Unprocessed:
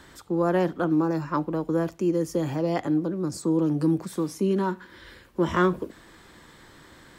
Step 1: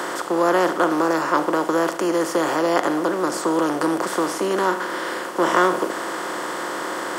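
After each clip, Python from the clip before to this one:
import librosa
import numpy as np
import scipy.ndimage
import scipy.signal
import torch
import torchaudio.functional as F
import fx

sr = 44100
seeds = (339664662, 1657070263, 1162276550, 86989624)

y = fx.bin_compress(x, sr, power=0.4)
y = scipy.signal.sosfilt(scipy.signal.butter(2, 440.0, 'highpass', fs=sr, output='sos'), y)
y = F.gain(torch.from_numpy(y), 4.5).numpy()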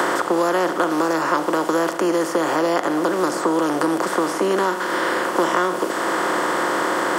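y = fx.band_squash(x, sr, depth_pct=100)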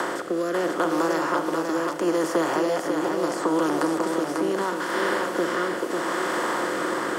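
y = fx.rotary(x, sr, hz=0.75)
y = y + 10.0 ** (-4.5 / 20.0) * np.pad(y, (int(544 * sr / 1000.0), 0))[:len(y)]
y = F.gain(torch.from_numpy(y), -3.5).numpy()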